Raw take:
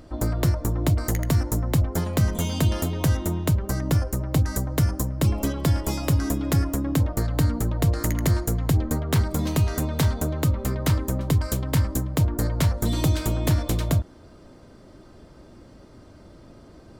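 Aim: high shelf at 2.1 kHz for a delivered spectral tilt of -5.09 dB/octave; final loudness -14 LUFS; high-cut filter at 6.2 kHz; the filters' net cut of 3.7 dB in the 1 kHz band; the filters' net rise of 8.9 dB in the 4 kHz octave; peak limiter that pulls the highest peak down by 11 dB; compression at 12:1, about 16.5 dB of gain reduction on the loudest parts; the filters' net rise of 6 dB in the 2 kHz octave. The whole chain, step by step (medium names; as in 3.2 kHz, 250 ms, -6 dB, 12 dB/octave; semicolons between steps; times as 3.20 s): low-pass 6.2 kHz; peaking EQ 1 kHz -8 dB; peaking EQ 2 kHz +5.5 dB; treble shelf 2.1 kHz +5.5 dB; peaking EQ 4 kHz +5.5 dB; compression 12:1, threshold -33 dBFS; trim +25.5 dB; peak limiter -1 dBFS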